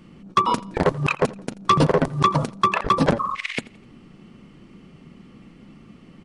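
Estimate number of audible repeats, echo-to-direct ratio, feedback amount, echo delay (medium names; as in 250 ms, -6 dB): 2, -20.5 dB, 41%, 84 ms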